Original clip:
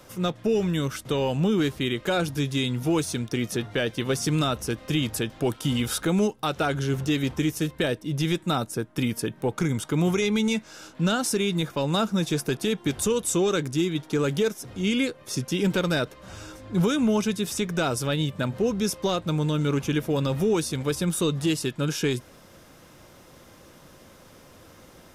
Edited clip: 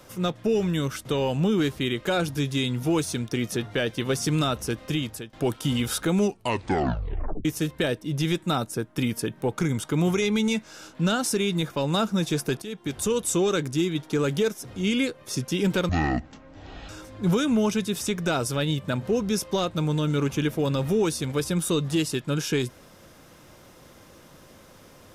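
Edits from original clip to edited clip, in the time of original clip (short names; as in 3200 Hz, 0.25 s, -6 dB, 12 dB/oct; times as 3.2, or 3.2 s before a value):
4.84–5.33 fade out, to -18 dB
6.21 tape stop 1.24 s
12.62–13.16 fade in, from -13.5 dB
15.89–16.4 speed 51%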